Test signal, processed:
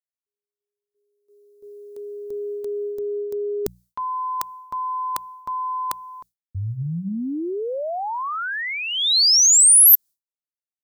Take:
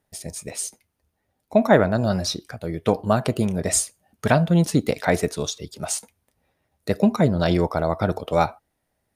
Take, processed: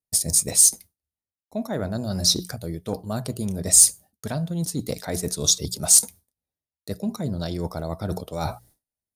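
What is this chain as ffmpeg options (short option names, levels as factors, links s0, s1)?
-af "bandreject=f=60:t=h:w=6,bandreject=f=120:t=h:w=6,bandreject=f=180:t=h:w=6,agate=range=0.0224:threshold=0.00398:ratio=3:detection=peak,lowshelf=f=380:g=9,areverse,acompressor=threshold=0.0355:ratio=10,areverse,aexciter=amount=3.6:drive=7.2:freq=3800,volume=1.58"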